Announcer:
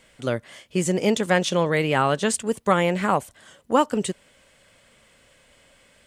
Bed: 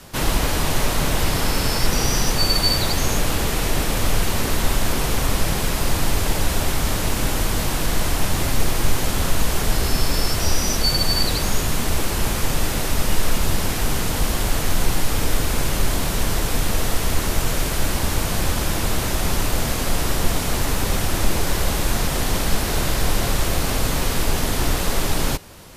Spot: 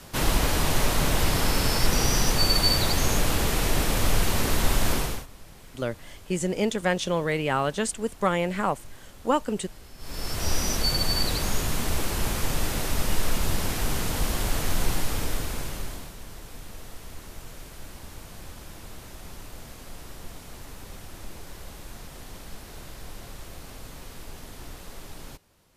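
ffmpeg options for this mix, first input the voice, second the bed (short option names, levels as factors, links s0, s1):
-filter_complex "[0:a]adelay=5550,volume=0.596[s0];[1:a]volume=8.41,afade=t=out:st=4.93:d=0.33:silence=0.0630957,afade=t=in:st=9.98:d=0.57:silence=0.0841395,afade=t=out:st=14.9:d=1.25:silence=0.16788[s1];[s0][s1]amix=inputs=2:normalize=0"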